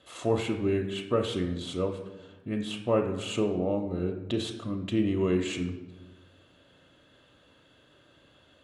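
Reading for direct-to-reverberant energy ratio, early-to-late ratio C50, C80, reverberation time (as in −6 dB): 3.5 dB, 8.5 dB, 11.0 dB, 1.2 s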